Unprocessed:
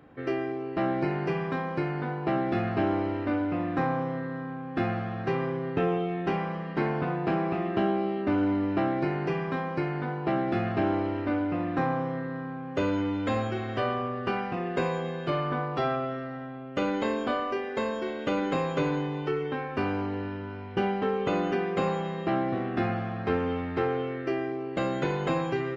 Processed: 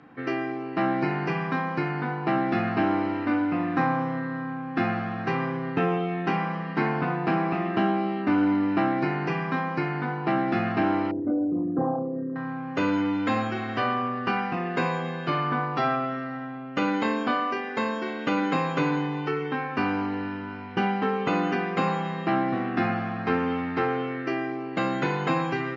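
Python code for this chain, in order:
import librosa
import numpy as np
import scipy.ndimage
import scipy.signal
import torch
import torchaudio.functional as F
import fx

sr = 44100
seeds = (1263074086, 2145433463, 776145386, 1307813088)

y = fx.envelope_sharpen(x, sr, power=3.0, at=(11.11, 12.36))
y = fx.cabinet(y, sr, low_hz=170.0, low_slope=12, high_hz=6300.0, hz=(390.0, 580.0, 3400.0), db=(-8, -10, -5))
y = y * 10.0 ** (6.0 / 20.0)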